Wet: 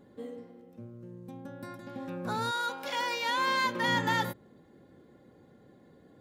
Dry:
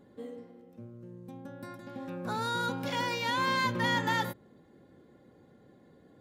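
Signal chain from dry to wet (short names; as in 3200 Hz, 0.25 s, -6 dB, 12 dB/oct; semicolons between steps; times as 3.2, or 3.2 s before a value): 2.5–3.86 HPF 670 Hz -> 250 Hz 12 dB/oct; gain +1 dB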